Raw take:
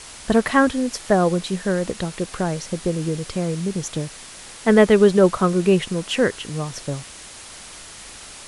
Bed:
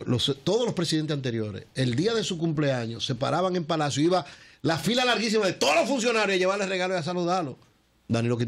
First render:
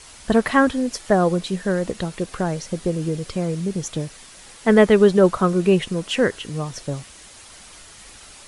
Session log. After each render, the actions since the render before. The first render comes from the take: noise reduction 6 dB, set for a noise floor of -40 dBFS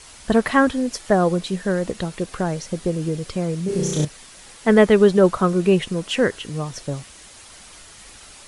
3.65–4.05 s: flutter echo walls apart 5.6 m, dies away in 1.2 s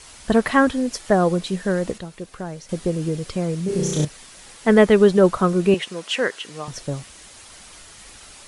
1.98–2.69 s: gain -8 dB; 5.74–6.68 s: frequency weighting A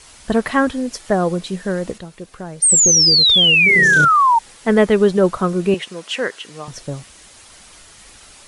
2.62–4.39 s: painted sound fall 890–9000 Hz -12 dBFS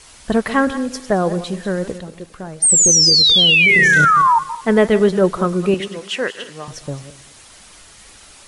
backward echo that repeats 111 ms, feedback 43%, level -13 dB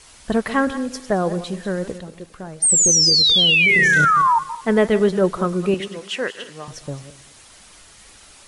trim -3 dB

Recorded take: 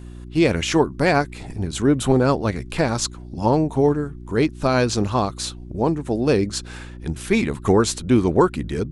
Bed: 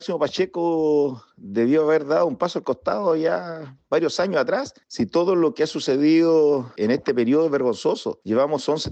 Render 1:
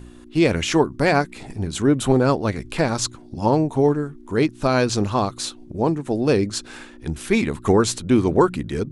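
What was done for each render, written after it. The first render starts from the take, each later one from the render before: de-hum 60 Hz, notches 3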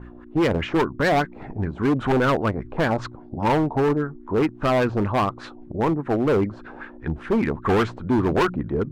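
LFO low-pass sine 5 Hz 650–1800 Hz; hard clipper -16 dBFS, distortion -8 dB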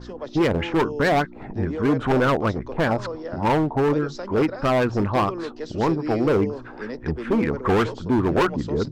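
add bed -12.5 dB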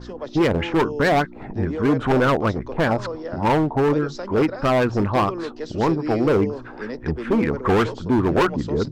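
trim +1.5 dB

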